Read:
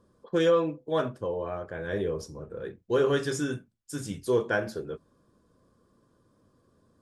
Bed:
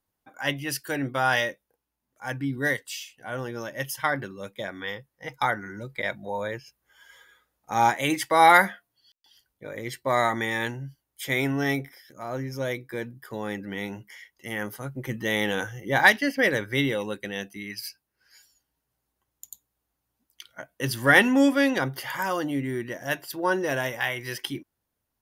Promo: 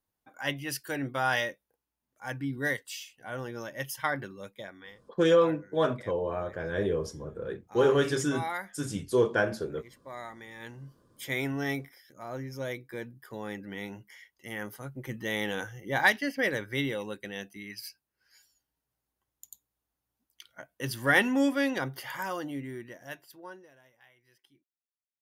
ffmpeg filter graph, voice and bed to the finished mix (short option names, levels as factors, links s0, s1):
-filter_complex "[0:a]adelay=4850,volume=1.12[s0];[1:a]volume=2.66,afade=t=out:st=4.33:d=0.62:silence=0.188365,afade=t=in:st=10.57:d=0.43:silence=0.223872,afade=t=out:st=22.13:d=1.58:silence=0.0446684[s1];[s0][s1]amix=inputs=2:normalize=0"